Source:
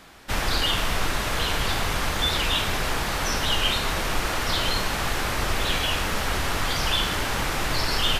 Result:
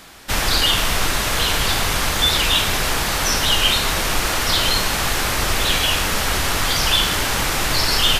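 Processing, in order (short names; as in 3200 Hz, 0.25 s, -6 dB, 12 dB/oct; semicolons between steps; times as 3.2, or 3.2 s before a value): high shelf 3600 Hz +7.5 dB; gain +4 dB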